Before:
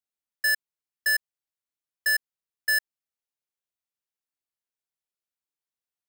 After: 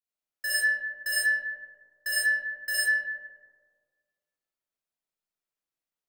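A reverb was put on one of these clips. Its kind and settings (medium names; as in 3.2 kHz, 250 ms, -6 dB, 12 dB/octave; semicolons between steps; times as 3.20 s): algorithmic reverb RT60 1.7 s, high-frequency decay 0.35×, pre-delay 15 ms, DRR -9 dB; trim -8 dB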